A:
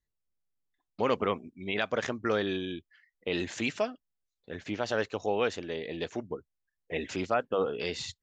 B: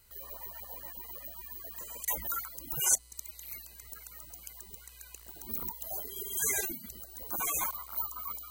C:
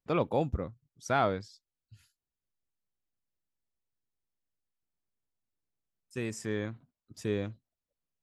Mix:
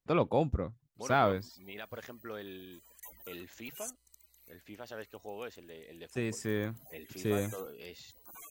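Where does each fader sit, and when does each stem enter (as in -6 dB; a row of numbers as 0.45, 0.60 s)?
-14.5, -17.5, +0.5 dB; 0.00, 0.95, 0.00 s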